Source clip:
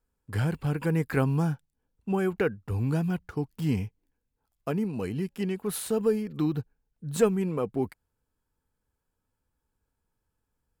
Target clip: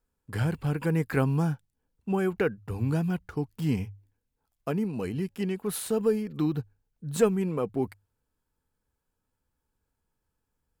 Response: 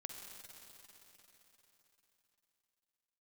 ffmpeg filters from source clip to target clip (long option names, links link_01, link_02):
-af "bandreject=frequency=50:width_type=h:width=6,bandreject=frequency=100:width_type=h:width=6"